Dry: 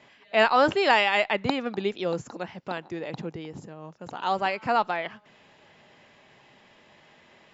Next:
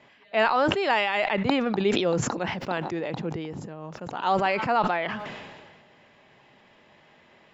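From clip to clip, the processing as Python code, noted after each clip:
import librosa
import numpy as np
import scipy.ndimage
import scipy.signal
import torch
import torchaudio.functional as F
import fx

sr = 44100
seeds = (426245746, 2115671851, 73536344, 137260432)

y = fx.rider(x, sr, range_db=3, speed_s=0.5)
y = fx.high_shelf(y, sr, hz=5200.0, db=-9.0)
y = fx.sustainer(y, sr, db_per_s=34.0)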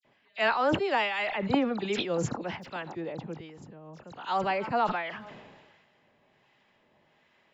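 y = fx.harmonic_tremolo(x, sr, hz=1.3, depth_pct=50, crossover_hz=980.0)
y = fx.dispersion(y, sr, late='lows', ms=48.0, hz=2900.0)
y = fx.upward_expand(y, sr, threshold_db=-36.0, expansion=1.5)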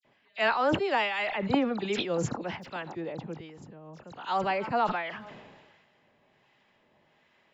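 y = x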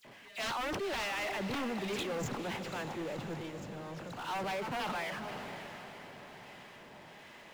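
y = 10.0 ** (-25.0 / 20.0) * (np.abs((x / 10.0 ** (-25.0 / 20.0) + 3.0) % 4.0 - 2.0) - 1.0)
y = fx.power_curve(y, sr, exponent=0.5)
y = fx.echo_diffused(y, sr, ms=513, feedback_pct=55, wet_db=-10.0)
y = y * librosa.db_to_amplitude(-7.5)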